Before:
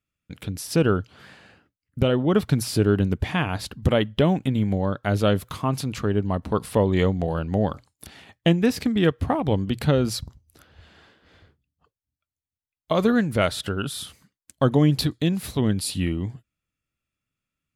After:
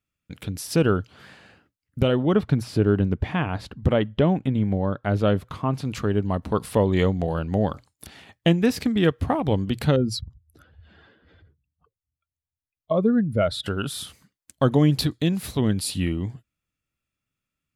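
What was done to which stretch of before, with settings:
2.34–5.85 s: low-pass 1.9 kHz 6 dB/octave
9.96–13.66 s: spectral contrast enhancement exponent 1.7

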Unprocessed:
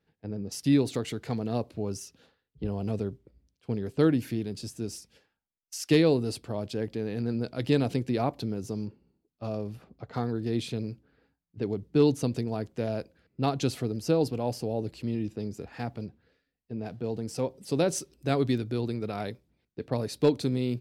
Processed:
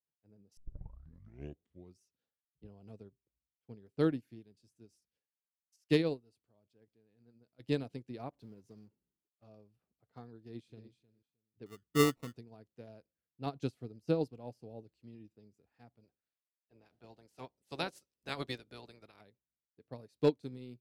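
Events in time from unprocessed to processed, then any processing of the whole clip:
0.57 s: tape start 1.46 s
5.76–7.60 s: upward expansion, over -32 dBFS
8.32–9.44 s: companding laws mixed up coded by mu
10.38–10.91 s: echo throw 310 ms, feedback 15%, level -8 dB
11.66–12.36 s: sample-rate reducer 1.6 kHz
13.46–14.84 s: bass shelf 400 Hz +2.5 dB
16.03–19.20 s: spectral peaks clipped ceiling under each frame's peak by 19 dB
whole clip: upward expansion 2.5:1, over -37 dBFS; trim -3.5 dB

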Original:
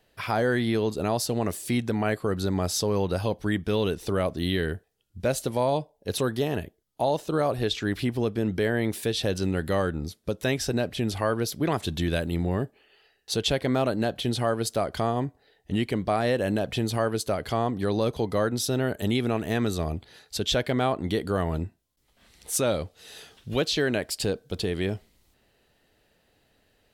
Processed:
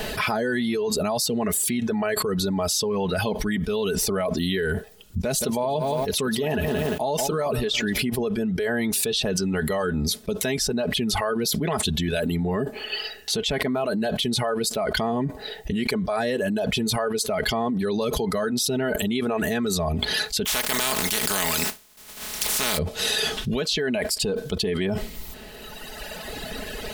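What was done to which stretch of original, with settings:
5.23–8.02 s: bit-crushed delay 173 ms, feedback 35%, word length 9-bit, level -12 dB
20.45–22.77 s: spectral contrast reduction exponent 0.2
whole clip: reverb removal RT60 1.8 s; comb 4.7 ms, depth 64%; level flattener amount 100%; trim -5 dB

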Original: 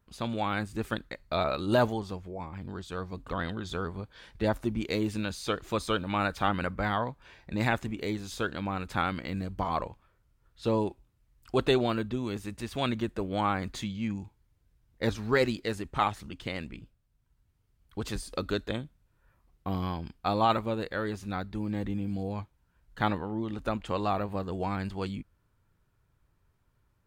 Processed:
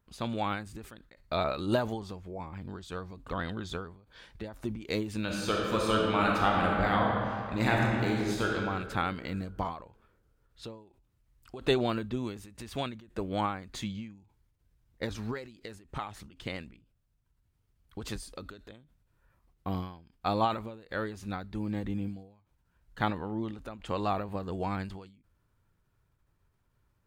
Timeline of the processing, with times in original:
5.21–8.52 s: reverb throw, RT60 2.3 s, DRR -2 dB
whole clip: endings held to a fixed fall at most 100 dB/s; trim -1 dB

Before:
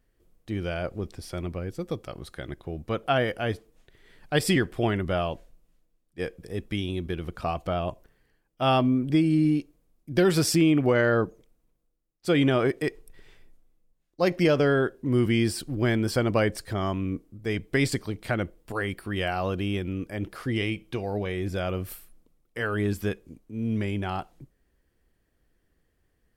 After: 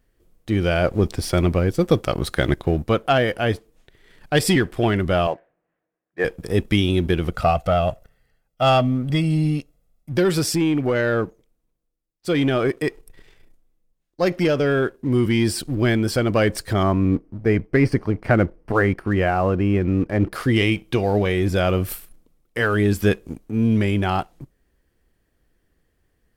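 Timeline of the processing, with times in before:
5.27–6.25 s: cabinet simulation 230–2200 Hz, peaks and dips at 240 Hz -9 dB, 720 Hz +5 dB, 1.7 kHz +7 dB
7.31–10.17 s: comb 1.5 ms
16.83–20.33 s: boxcar filter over 12 samples
whole clip: waveshaping leveller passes 1; gain riding 0.5 s; trim +3.5 dB

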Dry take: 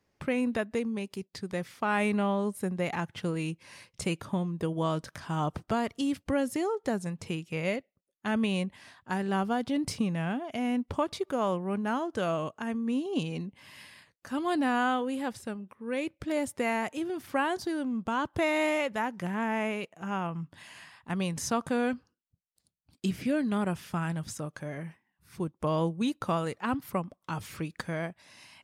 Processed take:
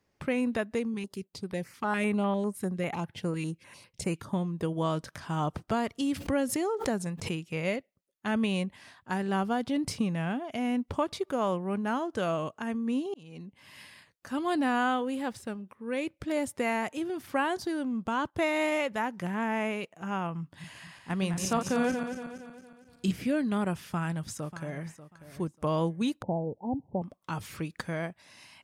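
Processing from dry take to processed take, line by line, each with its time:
0.94–4.33 s: step-sequenced notch 10 Hz 620–6900 Hz
6.14–7.45 s: swell ahead of each attack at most 88 dB/s
13.14–13.80 s: fade in
15.06–15.62 s: hysteresis with a dead band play -58.5 dBFS
18.30–18.72 s: upward expansion, over -44 dBFS
20.41–23.26 s: backward echo that repeats 116 ms, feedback 68%, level -7 dB
23.83–24.86 s: echo throw 590 ms, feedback 20%, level -14 dB
26.22–27.02 s: Chebyshev low-pass 910 Hz, order 8

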